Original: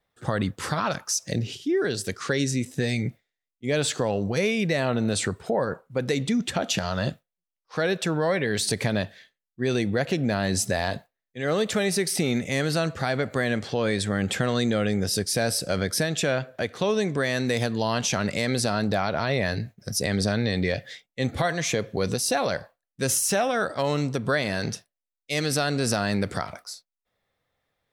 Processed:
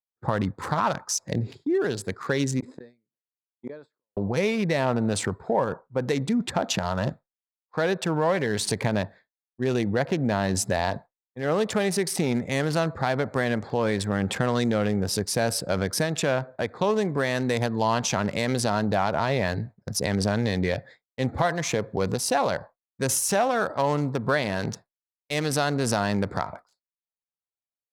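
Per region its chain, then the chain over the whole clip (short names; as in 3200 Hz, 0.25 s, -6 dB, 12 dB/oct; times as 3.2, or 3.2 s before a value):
2.6–4.17 flipped gate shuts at -19 dBFS, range -38 dB + speaker cabinet 250–8200 Hz, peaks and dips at 770 Hz -10 dB, 2100 Hz -4 dB, 7100 Hz -7 dB + sustainer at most 77 dB/s
whole clip: Wiener smoothing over 15 samples; expander -40 dBFS; bell 930 Hz +7.5 dB 0.51 oct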